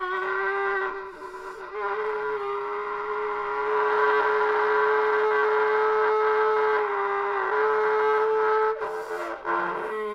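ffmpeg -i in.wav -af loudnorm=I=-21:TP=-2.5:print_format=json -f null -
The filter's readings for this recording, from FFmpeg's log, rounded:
"input_i" : "-24.5",
"input_tp" : "-10.5",
"input_lra" : "6.1",
"input_thresh" : "-34.7",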